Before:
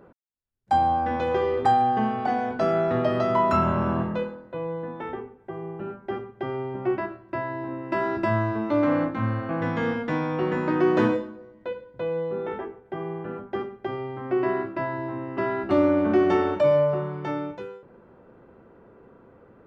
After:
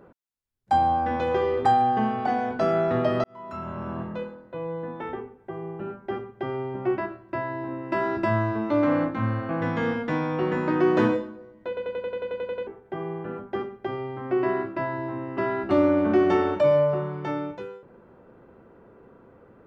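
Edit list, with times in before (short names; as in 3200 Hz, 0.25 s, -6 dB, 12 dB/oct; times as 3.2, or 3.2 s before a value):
3.24–4.89 fade in
11.68 stutter in place 0.09 s, 11 plays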